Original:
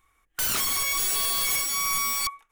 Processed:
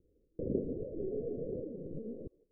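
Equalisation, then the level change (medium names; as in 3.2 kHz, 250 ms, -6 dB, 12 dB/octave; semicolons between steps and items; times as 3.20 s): steep low-pass 520 Hz 72 dB/octave; bass shelf 61 Hz -10.5 dB; bass shelf 250 Hz -9 dB; +13.5 dB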